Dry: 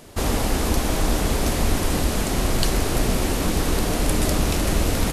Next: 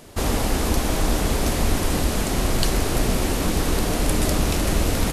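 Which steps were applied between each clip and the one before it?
nothing audible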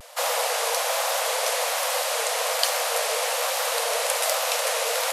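Chebyshev high-pass 470 Hz, order 10; vibrato 1.2 Hz 77 cents; gain +3.5 dB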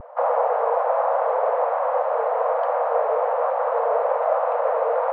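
LPF 1100 Hz 24 dB/oct; gain +7.5 dB

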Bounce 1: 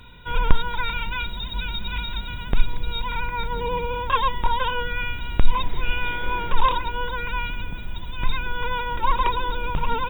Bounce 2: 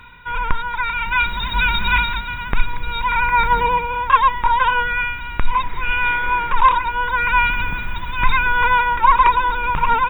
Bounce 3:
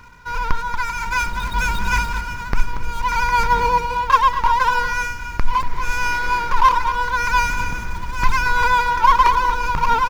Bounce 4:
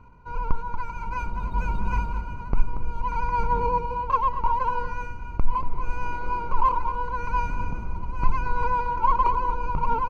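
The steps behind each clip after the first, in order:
band shelf 1500 Hz +11 dB; AGC gain up to 11.5 dB; gain -1 dB
median filter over 15 samples; outdoor echo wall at 40 m, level -11 dB
running mean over 25 samples; gain -2.5 dB

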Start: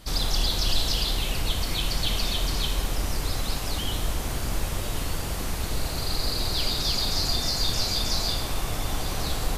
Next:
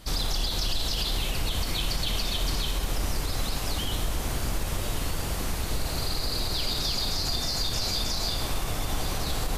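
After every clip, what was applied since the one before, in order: limiter -18 dBFS, peak gain reduction 7 dB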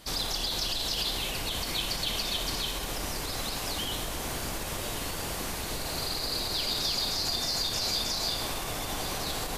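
low shelf 140 Hz -12 dB; notch 1300 Hz, Q 25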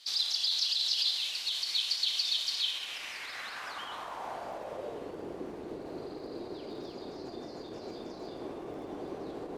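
band-pass sweep 4200 Hz -> 360 Hz, 2.46–5.24; crackle 25/s -56 dBFS; gain +4 dB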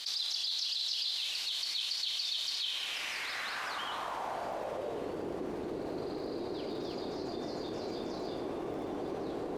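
fast leveller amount 70%; gain -6.5 dB

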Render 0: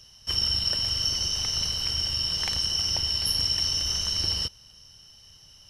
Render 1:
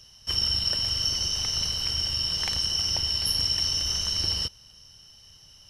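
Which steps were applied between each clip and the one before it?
nothing audible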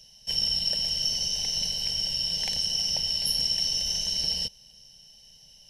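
fixed phaser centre 330 Hz, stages 6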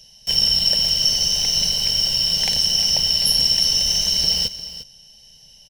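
in parallel at -5 dB: bit-crush 6-bit; on the sum: echo 0.352 s -14 dB; gain +5 dB

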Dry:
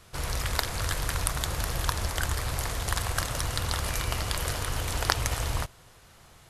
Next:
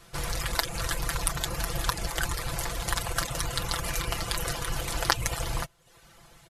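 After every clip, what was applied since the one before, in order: reverb removal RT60 0.59 s; comb 5.9 ms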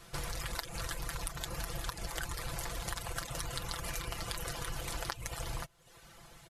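compressor 6:1, threshold -34 dBFS, peak gain reduction 16 dB; gain -1 dB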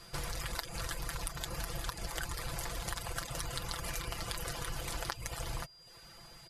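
whine 4800 Hz -56 dBFS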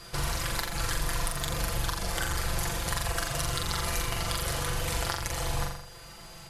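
soft clip -18.5 dBFS, distortion -28 dB; flutter echo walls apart 7.3 m, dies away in 0.75 s; gain +6 dB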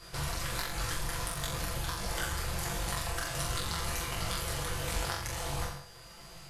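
detuned doubles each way 49 cents

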